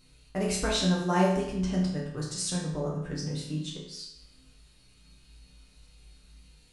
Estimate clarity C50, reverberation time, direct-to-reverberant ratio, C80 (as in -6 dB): 3.0 dB, 0.80 s, -5.0 dB, 6.0 dB